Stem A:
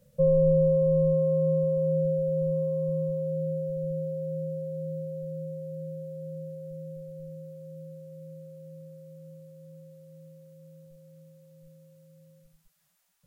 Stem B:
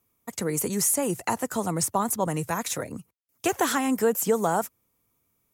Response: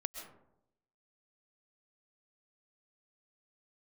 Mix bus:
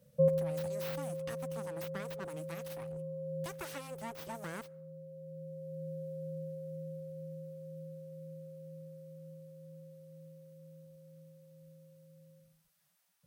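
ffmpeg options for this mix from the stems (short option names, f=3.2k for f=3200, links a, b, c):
-filter_complex "[0:a]volume=-4dB,asplit=2[a][b];[b]volume=-18.5dB[c];[1:a]aeval=exprs='abs(val(0))':c=same,volume=-16.5dB,asplit=3[d][e][f];[e]volume=-22.5dB[g];[f]apad=whole_len=584871[h];[a][h]sidechaincompress=threshold=-56dB:ratio=8:attack=27:release=979[i];[2:a]atrim=start_sample=2205[j];[c][g]amix=inputs=2:normalize=0[k];[k][j]afir=irnorm=-1:irlink=0[l];[i][d][l]amix=inputs=3:normalize=0,highpass=72,bandreject=f=7.1k:w=11"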